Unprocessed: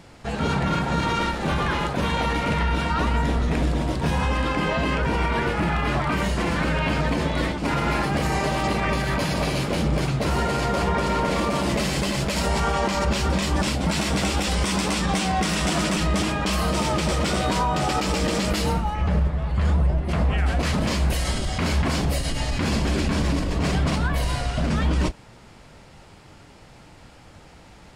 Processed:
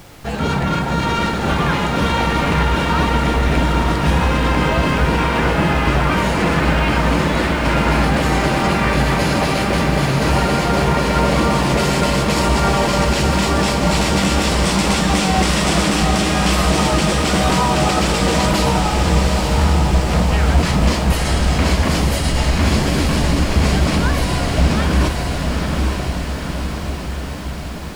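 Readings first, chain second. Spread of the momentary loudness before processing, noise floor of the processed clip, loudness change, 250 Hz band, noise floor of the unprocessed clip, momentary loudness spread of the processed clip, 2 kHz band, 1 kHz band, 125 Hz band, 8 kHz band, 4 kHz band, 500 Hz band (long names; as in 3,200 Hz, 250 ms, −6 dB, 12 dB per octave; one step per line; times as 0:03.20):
2 LU, −24 dBFS, +6.5 dB, +7.0 dB, −48 dBFS, 4 LU, +7.5 dB, +7.0 dB, +7.0 dB, +7.5 dB, +7.0 dB, +7.0 dB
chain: background noise pink −49 dBFS
on a send: feedback delay with all-pass diffusion 902 ms, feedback 65%, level −3 dB
on the sum: level +4.5 dB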